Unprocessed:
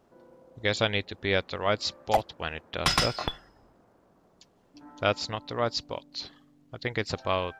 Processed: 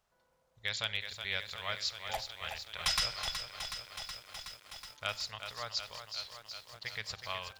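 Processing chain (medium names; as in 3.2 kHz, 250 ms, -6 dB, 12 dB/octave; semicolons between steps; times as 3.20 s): amplifier tone stack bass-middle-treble 10-0-10; wavefolder -17 dBFS; on a send at -15 dB: reverberation RT60 0.80 s, pre-delay 5 ms; on the sum: bit-crushed delay 371 ms, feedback 80%, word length 9-bit, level -8 dB; trim -3 dB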